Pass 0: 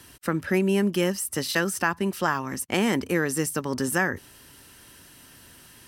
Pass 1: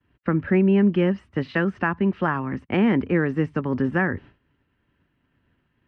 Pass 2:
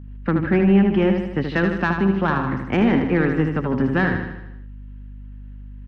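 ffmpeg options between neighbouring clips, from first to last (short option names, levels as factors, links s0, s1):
-filter_complex "[0:a]lowpass=f=2600:w=0.5412,lowpass=f=2600:w=1.3066,agate=range=0.0224:threshold=0.00794:ratio=3:detection=peak,acrossover=split=320[s0][s1];[s0]acontrast=76[s2];[s2][s1]amix=inputs=2:normalize=0"
-af "asoftclip=type=tanh:threshold=0.224,aeval=exprs='val(0)+0.0112*(sin(2*PI*50*n/s)+sin(2*PI*2*50*n/s)/2+sin(2*PI*3*50*n/s)/3+sin(2*PI*4*50*n/s)/4+sin(2*PI*5*50*n/s)/5)':c=same,aecho=1:1:77|154|231|308|385|462|539:0.501|0.276|0.152|0.0834|0.0459|0.0252|0.0139,volume=1.41"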